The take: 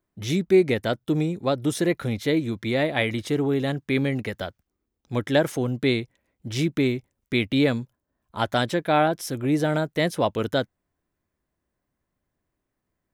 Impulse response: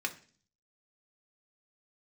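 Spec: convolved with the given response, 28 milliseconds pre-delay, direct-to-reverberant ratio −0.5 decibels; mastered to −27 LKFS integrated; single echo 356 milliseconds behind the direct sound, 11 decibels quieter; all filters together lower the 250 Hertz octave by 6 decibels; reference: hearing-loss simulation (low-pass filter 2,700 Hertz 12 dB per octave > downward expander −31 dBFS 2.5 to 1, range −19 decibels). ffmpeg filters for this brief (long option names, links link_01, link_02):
-filter_complex "[0:a]equalizer=frequency=250:width_type=o:gain=-8.5,aecho=1:1:356:0.282,asplit=2[link_01][link_02];[1:a]atrim=start_sample=2205,adelay=28[link_03];[link_02][link_03]afir=irnorm=-1:irlink=0,volume=-3.5dB[link_04];[link_01][link_04]amix=inputs=2:normalize=0,lowpass=2700,agate=range=-19dB:threshold=-31dB:ratio=2.5,volume=-1.5dB"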